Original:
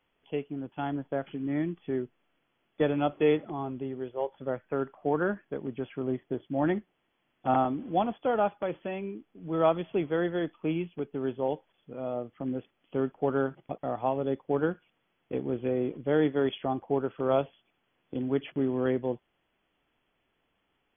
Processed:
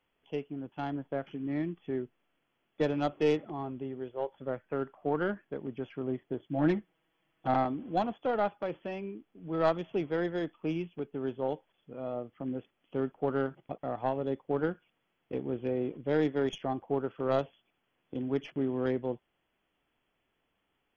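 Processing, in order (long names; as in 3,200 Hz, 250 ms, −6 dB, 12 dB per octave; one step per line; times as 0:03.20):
stylus tracing distortion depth 0.084 ms
0:06.48–0:07.48: comb filter 6.2 ms, depth 81%
level −3 dB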